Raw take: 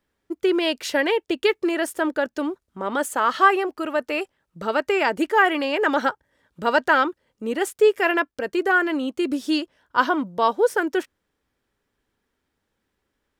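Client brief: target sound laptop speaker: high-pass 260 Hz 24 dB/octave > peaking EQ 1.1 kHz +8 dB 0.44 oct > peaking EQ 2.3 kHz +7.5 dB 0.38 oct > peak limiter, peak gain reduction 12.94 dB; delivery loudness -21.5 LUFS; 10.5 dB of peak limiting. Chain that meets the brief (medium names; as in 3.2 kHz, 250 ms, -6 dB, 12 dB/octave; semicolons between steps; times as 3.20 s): peak limiter -14 dBFS; high-pass 260 Hz 24 dB/octave; peaking EQ 1.1 kHz +8 dB 0.44 oct; peaking EQ 2.3 kHz +7.5 dB 0.38 oct; trim +9 dB; peak limiter -12 dBFS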